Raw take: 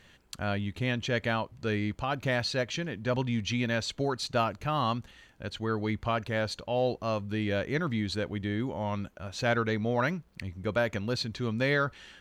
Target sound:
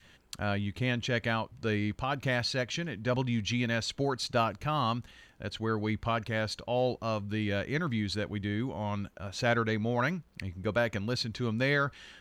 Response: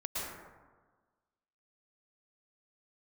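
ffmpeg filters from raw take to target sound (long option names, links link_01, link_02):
-af "adynamicequalizer=threshold=0.00891:dfrequency=510:dqfactor=0.87:tfrequency=510:tqfactor=0.87:attack=5:release=100:ratio=0.375:range=2:mode=cutabove:tftype=bell"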